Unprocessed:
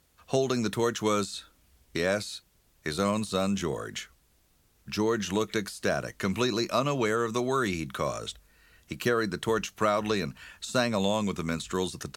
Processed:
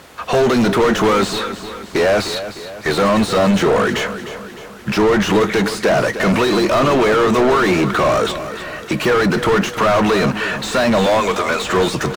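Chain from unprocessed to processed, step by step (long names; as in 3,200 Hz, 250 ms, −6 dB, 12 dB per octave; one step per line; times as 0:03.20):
0:11.06–0:11.67: high-pass filter 460 Hz 24 dB per octave
mid-hump overdrive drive 36 dB, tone 1,100 Hz, clips at −12 dBFS
repeating echo 305 ms, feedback 51%, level −12 dB
level +6.5 dB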